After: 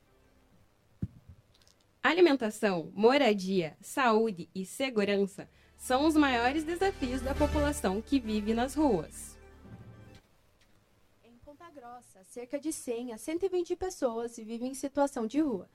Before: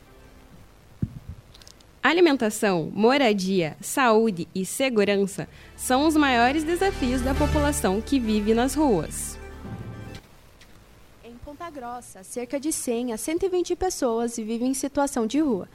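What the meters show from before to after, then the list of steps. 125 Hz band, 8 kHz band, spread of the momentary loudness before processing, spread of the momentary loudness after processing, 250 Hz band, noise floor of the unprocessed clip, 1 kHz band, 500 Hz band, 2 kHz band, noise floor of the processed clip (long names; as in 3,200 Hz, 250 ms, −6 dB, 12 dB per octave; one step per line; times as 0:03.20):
−8.5 dB, −12.0 dB, 18 LU, 17 LU, −7.0 dB, −52 dBFS, −7.0 dB, −6.5 dB, −7.0 dB, −67 dBFS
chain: parametric band 570 Hz +3.5 dB 0.2 octaves
flanger 1.5 Hz, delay 9.3 ms, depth 1.8 ms, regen −46%
expander for the loud parts 1.5 to 1, over −39 dBFS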